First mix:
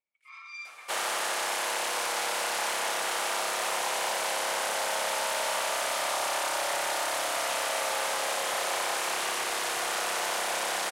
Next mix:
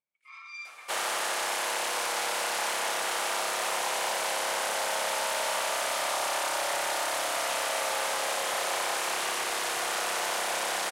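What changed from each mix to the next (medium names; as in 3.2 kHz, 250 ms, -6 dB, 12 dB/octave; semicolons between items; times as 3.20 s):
speech -4.0 dB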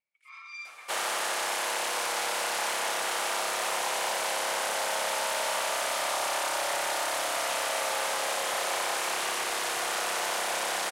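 speech +7.5 dB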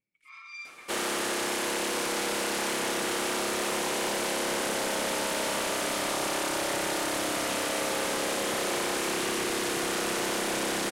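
master: add resonant low shelf 460 Hz +14 dB, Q 1.5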